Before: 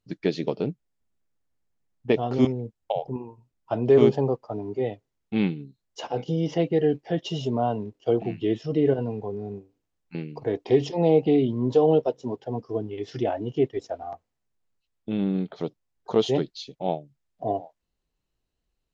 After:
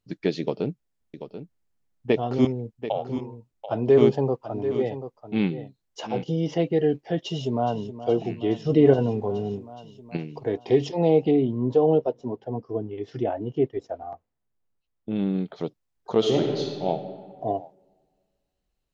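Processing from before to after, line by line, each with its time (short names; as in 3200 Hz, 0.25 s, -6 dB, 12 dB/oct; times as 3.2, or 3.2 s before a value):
0.4–6.23 echo 0.736 s -11 dB
7.19–7.93 echo throw 0.42 s, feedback 75%, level -13 dB
8.66–10.17 gain +5 dB
11.31–15.16 high shelf 2600 Hz -11.5 dB
16.18–16.86 reverb throw, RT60 1.8 s, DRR 0 dB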